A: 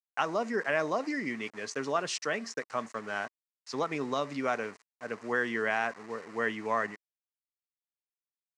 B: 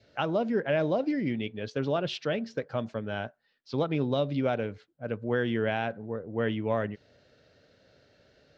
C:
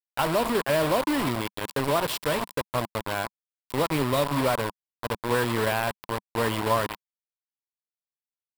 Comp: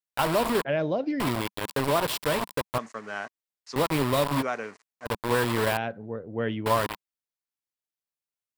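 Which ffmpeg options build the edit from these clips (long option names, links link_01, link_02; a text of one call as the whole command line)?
ffmpeg -i take0.wav -i take1.wav -i take2.wav -filter_complex "[1:a]asplit=2[link_01][link_02];[0:a]asplit=2[link_03][link_04];[2:a]asplit=5[link_05][link_06][link_07][link_08][link_09];[link_05]atrim=end=0.652[link_10];[link_01]atrim=start=0.648:end=1.202[link_11];[link_06]atrim=start=1.198:end=2.782[link_12];[link_03]atrim=start=2.778:end=3.762[link_13];[link_07]atrim=start=3.758:end=4.43[link_14];[link_04]atrim=start=4.41:end=5.07[link_15];[link_08]atrim=start=5.05:end=5.772[link_16];[link_02]atrim=start=5.768:end=6.662[link_17];[link_09]atrim=start=6.658[link_18];[link_10][link_11]acrossfade=duration=0.004:curve1=hsin:curve2=hsin[link_19];[link_19][link_12]acrossfade=duration=0.004:curve1=hsin:curve2=hsin[link_20];[link_20][link_13]acrossfade=duration=0.004:curve1=hsin:curve2=hsin[link_21];[link_21][link_14]acrossfade=duration=0.004:curve1=hsin:curve2=hsin[link_22];[link_22][link_15]acrossfade=duration=0.02:curve1=tri:curve2=tri[link_23];[link_23][link_16]acrossfade=duration=0.02:curve1=tri:curve2=tri[link_24];[link_24][link_17]acrossfade=duration=0.004:curve1=hsin:curve2=hsin[link_25];[link_25][link_18]acrossfade=duration=0.004:curve1=hsin:curve2=hsin" out.wav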